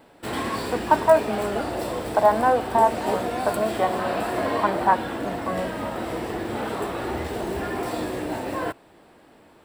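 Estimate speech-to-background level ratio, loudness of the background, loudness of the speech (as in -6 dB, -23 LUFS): 5.0 dB, -29.0 LUFS, -24.0 LUFS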